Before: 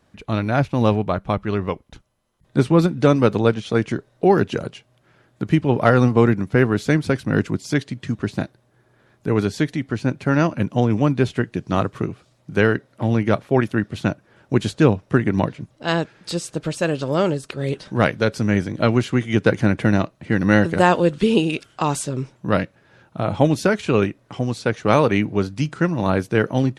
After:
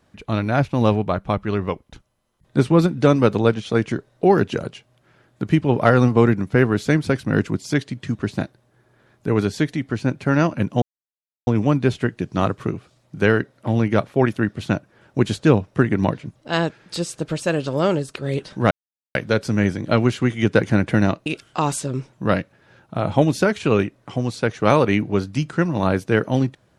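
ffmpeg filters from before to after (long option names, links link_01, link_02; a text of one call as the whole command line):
ffmpeg -i in.wav -filter_complex "[0:a]asplit=4[link_01][link_02][link_03][link_04];[link_01]atrim=end=10.82,asetpts=PTS-STARTPTS,afade=type=out:start_time=10.816:duration=0.004:curve=hsin,apad=pad_dur=0.65[link_05];[link_02]atrim=start=10.82:end=18.06,asetpts=PTS-STARTPTS,afade=type=in:duration=0.004:curve=hsin,afade=type=out:start_time=7.236:duration=0.004:curve=hsin,apad=pad_dur=0.44[link_06];[link_03]atrim=start=18.06:end=20.172,asetpts=PTS-STARTPTS,afade=type=in:duration=0.004:curve=hsin[link_07];[link_04]atrim=start=21.488[link_08];[link_05][link_06][link_07]concat=n=3:v=0:a=1[link_09];[link_09][link_08]acrossfade=duration=0.004:curve1=hsin:curve2=hsin" out.wav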